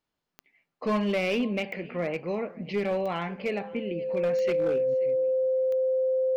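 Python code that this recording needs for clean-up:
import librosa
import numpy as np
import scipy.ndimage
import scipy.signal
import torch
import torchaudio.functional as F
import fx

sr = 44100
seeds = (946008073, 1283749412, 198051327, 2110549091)

y = fx.fix_declip(x, sr, threshold_db=-21.0)
y = fx.fix_declick_ar(y, sr, threshold=10.0)
y = fx.notch(y, sr, hz=520.0, q=30.0)
y = fx.fix_echo_inverse(y, sr, delay_ms=533, level_db=-21.5)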